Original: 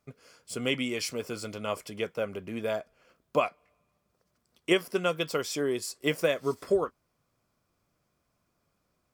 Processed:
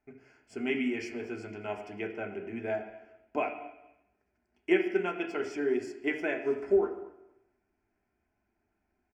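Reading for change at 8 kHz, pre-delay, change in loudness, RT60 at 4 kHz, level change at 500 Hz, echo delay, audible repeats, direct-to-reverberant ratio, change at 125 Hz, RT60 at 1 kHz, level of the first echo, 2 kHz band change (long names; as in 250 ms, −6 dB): below −15 dB, 3 ms, −1.5 dB, 0.95 s, −1.5 dB, 233 ms, 1, 2.0 dB, −8.5 dB, 0.95 s, −21.0 dB, −1.5 dB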